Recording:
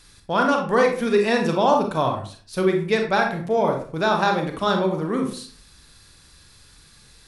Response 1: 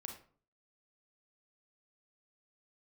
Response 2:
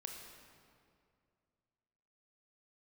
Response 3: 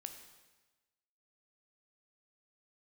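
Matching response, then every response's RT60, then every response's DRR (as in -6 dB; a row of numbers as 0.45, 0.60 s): 1; 0.45, 2.3, 1.2 s; 2.5, 1.5, 6.0 dB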